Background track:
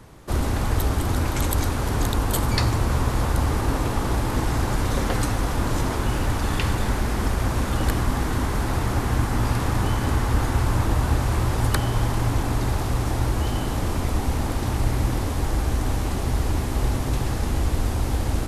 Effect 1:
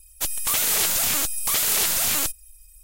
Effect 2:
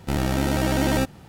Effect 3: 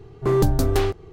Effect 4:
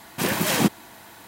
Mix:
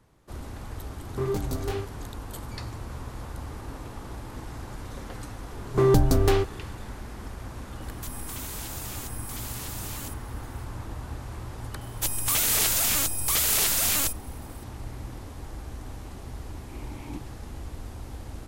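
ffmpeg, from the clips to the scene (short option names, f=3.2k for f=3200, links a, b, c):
-filter_complex "[3:a]asplit=2[a][b];[1:a]asplit=2[c][d];[0:a]volume=-15.5dB[e];[a]flanger=delay=19.5:depth=4.6:speed=2.2[f];[c]acompressor=threshold=-29dB:ratio=6:attack=3.2:release=140:knee=1:detection=peak[g];[4:a]asplit=3[h][i][j];[h]bandpass=f=300:t=q:w=8,volume=0dB[k];[i]bandpass=f=870:t=q:w=8,volume=-6dB[l];[j]bandpass=f=2.24k:t=q:w=8,volume=-9dB[m];[k][l][m]amix=inputs=3:normalize=0[n];[f]atrim=end=1.12,asetpts=PTS-STARTPTS,volume=-7dB,afade=t=in:d=0.004:c=hsin,afade=t=out:st=1.116:d=0.004:c=hsin,adelay=920[o];[b]atrim=end=1.12,asetpts=PTS-STARTPTS,volume=-0.5dB,afade=t=in:d=0.004:c=hsin,afade=t=out:st=1.116:d=0.004:c=hsin,adelay=5520[p];[g]atrim=end=2.83,asetpts=PTS-STARTPTS,volume=-6.5dB,afade=t=in:d=0.004:c=hsin,afade=t=out:st=2.826:d=0.004:c=hsin,adelay=7820[q];[d]atrim=end=2.83,asetpts=PTS-STARTPTS,volume=-2dB,afade=t=in:d=0.004:c=hsin,afade=t=out:st=2.826:d=0.004:c=hsin,adelay=11810[r];[n]atrim=end=1.27,asetpts=PTS-STARTPTS,volume=-10.5dB,afade=t=in:d=0.004:c=hsin,afade=t=out:st=1.266:d=0.004:c=hsin,adelay=16500[s];[e][o][p][q][r][s]amix=inputs=6:normalize=0"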